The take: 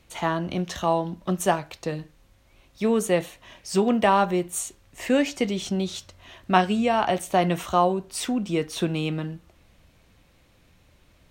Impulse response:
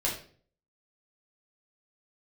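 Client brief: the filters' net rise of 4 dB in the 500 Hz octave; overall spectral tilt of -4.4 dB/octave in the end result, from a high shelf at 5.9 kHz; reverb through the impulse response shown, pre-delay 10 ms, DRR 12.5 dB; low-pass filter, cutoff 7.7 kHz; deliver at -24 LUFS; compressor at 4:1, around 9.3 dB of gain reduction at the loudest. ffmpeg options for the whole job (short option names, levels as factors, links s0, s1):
-filter_complex "[0:a]lowpass=7700,equalizer=f=500:t=o:g=5,highshelf=f=5900:g=7.5,acompressor=threshold=0.0631:ratio=4,asplit=2[s0][s1];[1:a]atrim=start_sample=2205,adelay=10[s2];[s1][s2]afir=irnorm=-1:irlink=0,volume=0.1[s3];[s0][s3]amix=inputs=2:normalize=0,volume=1.78"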